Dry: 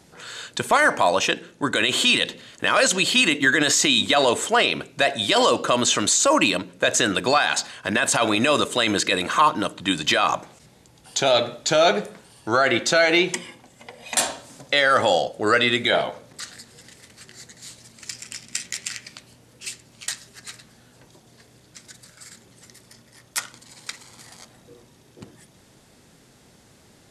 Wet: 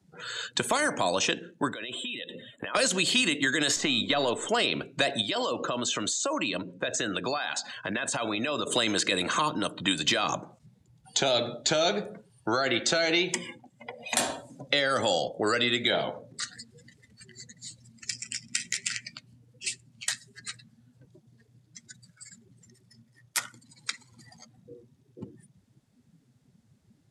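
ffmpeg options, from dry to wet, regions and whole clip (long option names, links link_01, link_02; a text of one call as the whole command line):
ffmpeg -i in.wav -filter_complex "[0:a]asettb=1/sr,asplit=3[link_01][link_02][link_03];[link_01]atrim=end=1.734[link_04];[link_02]atrim=start=1.73:end=2.75,asetpts=PTS-STARTPTS,afade=type=in:duration=0.004:curve=qsin,afade=type=out:start_time=1.016:duration=0.004:curve=qsin,equalizer=frequency=630:width_type=o:width=0.68:gain=3.5,acompressor=threshold=-32dB:ratio=20:attack=3.2:release=140:knee=1:detection=peak,asuperstop=centerf=5400:order=20:qfactor=1.9[link_05];[link_03]atrim=start=2.746[link_06];[link_04][link_05]acrossfade=duration=0.004:curve1=hsin:curve2=qsin[link_07];[link_07][link_06]acrossfade=duration=0.004:curve1=qsin:curve2=hsin,asettb=1/sr,asplit=3[link_08][link_09][link_10];[link_08]atrim=end=3.764[link_11];[link_09]atrim=start=3.76:end=4.49,asetpts=PTS-STARTPTS,afade=type=in:duration=0.004:curve=qsin,afade=type=out:start_time=0.726:duration=0.004:curve=qsin,aeval=exprs='if(lt(val(0),0),0.708*val(0),val(0))':channel_layout=same,highshelf=frequency=4100:gain=-11[link_12];[link_10]atrim=start=4.486[link_13];[link_11][link_12]acrossfade=duration=0.004:curve1=hsin:curve2=qsin[link_14];[link_14][link_13]acrossfade=duration=0.004:curve1=qsin:curve2=hsin,asettb=1/sr,asplit=3[link_15][link_16][link_17];[link_15]atrim=end=5.214[link_18];[link_16]atrim=start=5.21:end=8.67,asetpts=PTS-STARTPTS,afade=type=in:duration=0.004:curve=qsin,afade=type=out:start_time=3.456:duration=0.004:curve=qsin,lowpass=9200,acompressor=threshold=-34dB:ratio=2:attack=3.2:release=140:knee=1:detection=peak[link_19];[link_17]atrim=start=8.666[link_20];[link_18][link_19]acrossfade=duration=0.004:curve1=hsin:curve2=qsin[link_21];[link_21][link_20]acrossfade=duration=0.004:curve1=qsin:curve2=hsin,afftdn=noise_reduction=23:noise_floor=-41,acrossover=split=100|430|3700[link_22][link_23][link_24][link_25];[link_22]acompressor=threshold=-58dB:ratio=4[link_26];[link_23]acompressor=threshold=-33dB:ratio=4[link_27];[link_24]acompressor=threshold=-31dB:ratio=4[link_28];[link_25]acompressor=threshold=-30dB:ratio=4[link_29];[link_26][link_27][link_28][link_29]amix=inputs=4:normalize=0,volume=2dB" out.wav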